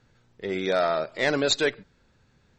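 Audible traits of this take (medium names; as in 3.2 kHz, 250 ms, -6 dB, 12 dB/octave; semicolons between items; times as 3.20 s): noise floor -64 dBFS; spectral tilt -3.0 dB/octave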